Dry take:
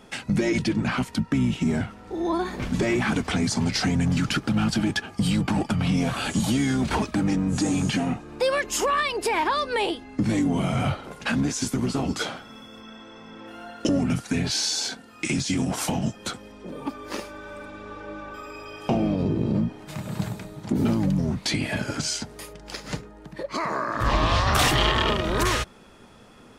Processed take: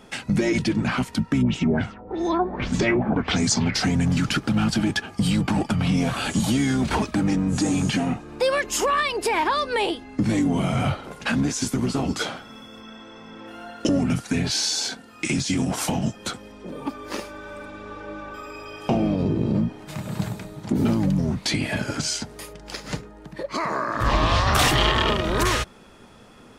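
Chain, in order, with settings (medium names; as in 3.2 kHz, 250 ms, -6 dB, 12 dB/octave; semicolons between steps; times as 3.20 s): 1.41–3.74 s: LFO low-pass sine 4 Hz -> 0.93 Hz 550–7900 Hz; trim +1.5 dB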